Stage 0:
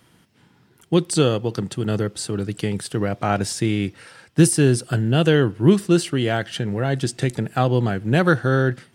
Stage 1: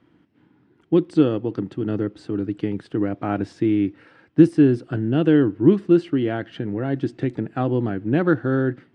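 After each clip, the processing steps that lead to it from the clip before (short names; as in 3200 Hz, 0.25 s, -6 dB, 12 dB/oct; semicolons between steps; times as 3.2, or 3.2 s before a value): LPF 2400 Hz 12 dB/oct; bell 300 Hz +13.5 dB 0.54 oct; gain -6 dB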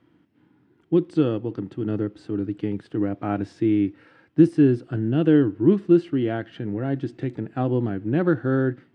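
harmonic-percussive split harmonic +5 dB; gain -5.5 dB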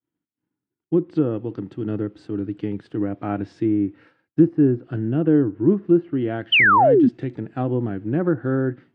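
treble ducked by the level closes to 1300 Hz, closed at -16 dBFS; expander -44 dBFS; painted sound fall, 6.52–7.09, 220–3200 Hz -14 dBFS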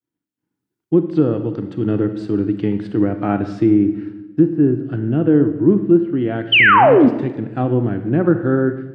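AGC gain up to 9.5 dB; reverb RT60 1.1 s, pre-delay 32 ms, DRR 9 dB; gain -1.5 dB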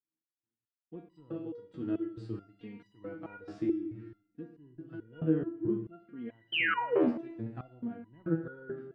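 stepped resonator 4.6 Hz 80–980 Hz; gain -7 dB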